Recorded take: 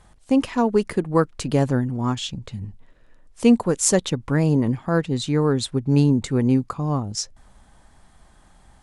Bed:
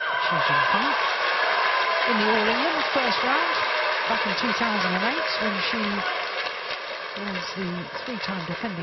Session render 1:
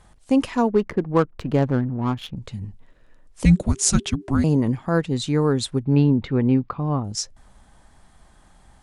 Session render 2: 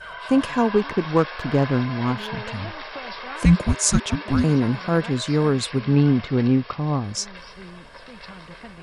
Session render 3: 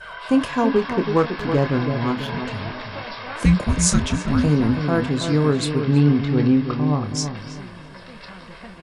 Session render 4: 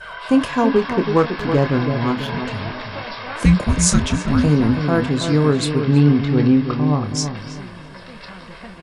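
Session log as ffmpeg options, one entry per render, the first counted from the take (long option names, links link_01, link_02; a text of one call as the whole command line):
ffmpeg -i in.wav -filter_complex "[0:a]asettb=1/sr,asplit=3[link_01][link_02][link_03];[link_01]atrim=end=0.694[link_04];[link_02]atrim=start=0.69:end=2.37,asetpts=PTS-STARTPTS,afade=type=in:duration=0.004:curve=qsin,afade=type=out:start_time=1.676:duration=0.004:curve=qsin,adynamicsmooth=sensitivity=2:basefreq=1100[link_05];[link_03]atrim=start=2.366[link_06];[link_04][link_05]acrossfade=duration=0.004:curve1=hsin:curve2=qsin[link_07];[link_07][link_06]acrossfade=duration=0.004:curve1=qsin:curve2=hsin,asettb=1/sr,asplit=3[link_08][link_09][link_10];[link_08]atrim=end=3.454[link_11];[link_09]atrim=start=3.45:end=4.44,asetpts=PTS-STARTPTS,afade=type=in:duration=0.004:curve=qsin,afade=type=out:start_time=0.986:duration=0.004:curve=qsin,afreqshift=-410[link_12];[link_10]atrim=start=4.436[link_13];[link_11][link_12]acrossfade=duration=0.004:curve1=hsin:curve2=qsin[link_14];[link_14][link_13]acrossfade=duration=0.004:curve1=qsin:curve2=hsin,asplit=3[link_15][link_16][link_17];[link_15]afade=type=out:start_time=5.82:duration=0.02[link_18];[link_16]lowpass=frequency=3600:width=0.5412,lowpass=frequency=3600:width=1.3066,afade=type=in:start_time=5.82:duration=0.02,afade=type=out:start_time=7.03:duration=0.02[link_19];[link_17]afade=type=in:start_time=7.03:duration=0.02[link_20];[link_18][link_19][link_20]amix=inputs=3:normalize=0" out.wav
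ffmpeg -i in.wav -i bed.wav -filter_complex "[1:a]volume=-11.5dB[link_01];[0:a][link_01]amix=inputs=2:normalize=0" out.wav
ffmpeg -i in.wav -filter_complex "[0:a]asplit=2[link_01][link_02];[link_02]adelay=27,volume=-9dB[link_03];[link_01][link_03]amix=inputs=2:normalize=0,asplit=2[link_04][link_05];[link_05]adelay=327,lowpass=frequency=1400:poles=1,volume=-7dB,asplit=2[link_06][link_07];[link_07]adelay=327,lowpass=frequency=1400:poles=1,volume=0.36,asplit=2[link_08][link_09];[link_09]adelay=327,lowpass=frequency=1400:poles=1,volume=0.36,asplit=2[link_10][link_11];[link_11]adelay=327,lowpass=frequency=1400:poles=1,volume=0.36[link_12];[link_04][link_06][link_08][link_10][link_12]amix=inputs=5:normalize=0" out.wav
ffmpeg -i in.wav -af "volume=2.5dB,alimiter=limit=-1dB:level=0:latency=1" out.wav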